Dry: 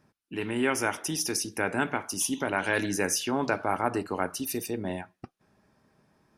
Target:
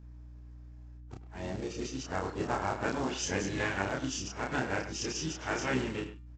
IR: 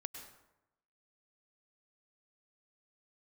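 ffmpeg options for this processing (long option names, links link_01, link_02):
-filter_complex "[0:a]areverse,equalizer=frequency=65:width=1.2:gain=12,bandreject=frequency=199.6:width_type=h:width=4,bandreject=frequency=399.2:width_type=h:width=4,bandreject=frequency=598.8:width_type=h:width=4,bandreject=frequency=798.4:width_type=h:width=4,bandreject=frequency=998:width_type=h:width=4,bandreject=frequency=1197.6:width_type=h:width=4,bandreject=frequency=1397.2:width_type=h:width=4,bandreject=frequency=1596.8:width_type=h:width=4,bandreject=frequency=1796.4:width_type=h:width=4,bandreject=frequency=1996:width_type=h:width=4,bandreject=frequency=2195.6:width_type=h:width=4,bandreject=frequency=2395.2:width_type=h:width=4,bandreject=frequency=2594.8:width_type=h:width=4,bandreject=frequency=2794.4:width_type=h:width=4,bandreject=frequency=2994:width_type=h:width=4,bandreject=frequency=3193.6:width_type=h:width=4,bandreject=frequency=3393.2:width_type=h:width=4,bandreject=frequency=3592.8:width_type=h:width=4,bandreject=frequency=3792.4:width_type=h:width=4,bandreject=frequency=3992:width_type=h:width=4,bandreject=frequency=4191.6:width_type=h:width=4,bandreject=frequency=4391.2:width_type=h:width=4,bandreject=frequency=4590.8:width_type=h:width=4,bandreject=frequency=4790.4:width_type=h:width=4,bandreject=frequency=4990:width_type=h:width=4,bandreject=frequency=5189.6:width_type=h:width=4,bandreject=frequency=5389.2:width_type=h:width=4,bandreject=frequency=5588.8:width_type=h:width=4,bandreject=frequency=5788.4:width_type=h:width=4,bandreject=frequency=5988:width_type=h:width=4,asplit=4[link_01][link_02][link_03][link_04];[link_02]asetrate=22050,aresample=44100,atempo=2,volume=-9dB[link_05];[link_03]asetrate=52444,aresample=44100,atempo=0.840896,volume=-10dB[link_06];[link_04]asetrate=55563,aresample=44100,atempo=0.793701,volume=-14dB[link_07];[link_01][link_05][link_06][link_07]amix=inputs=4:normalize=0,aresample=16000,acrusher=bits=4:mode=log:mix=0:aa=0.000001,aresample=44100,aeval=exprs='val(0)+0.00794*(sin(2*PI*60*n/s)+sin(2*PI*2*60*n/s)/2+sin(2*PI*3*60*n/s)/3+sin(2*PI*4*60*n/s)/4+sin(2*PI*5*60*n/s)/5)':channel_layout=same,asplit=2[link_08][link_09];[link_09]adelay=31,volume=-2.5dB[link_10];[link_08][link_10]amix=inputs=2:normalize=0,asplit=2[link_11][link_12];[link_12]adelay=100,highpass=300,lowpass=3400,asoftclip=type=hard:threshold=-15dB,volume=-11dB[link_13];[link_11][link_13]amix=inputs=2:normalize=0,volume=-8dB"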